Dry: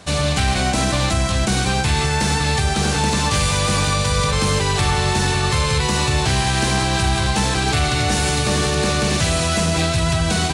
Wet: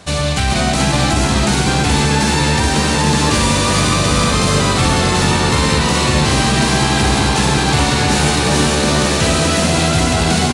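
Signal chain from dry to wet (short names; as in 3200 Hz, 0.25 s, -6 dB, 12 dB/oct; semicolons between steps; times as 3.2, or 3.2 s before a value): frequency-shifting echo 0.428 s, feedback 55%, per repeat +79 Hz, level -3 dB; gain +2 dB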